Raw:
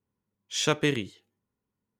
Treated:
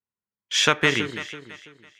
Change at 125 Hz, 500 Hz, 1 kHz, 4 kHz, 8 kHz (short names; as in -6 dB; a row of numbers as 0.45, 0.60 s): +1.0, +2.5, +8.5, +8.5, +5.0 dB